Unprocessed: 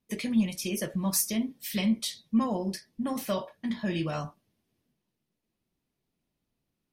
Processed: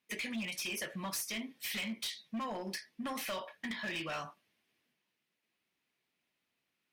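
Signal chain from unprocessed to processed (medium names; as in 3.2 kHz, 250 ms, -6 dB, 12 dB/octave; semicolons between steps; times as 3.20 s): high-pass 430 Hz 6 dB/octave; peaking EQ 2.2 kHz +12 dB 1.8 oct; compression 2.5:1, threshold -33 dBFS, peak gain reduction 8.5 dB; overload inside the chain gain 31.5 dB; trim -2.5 dB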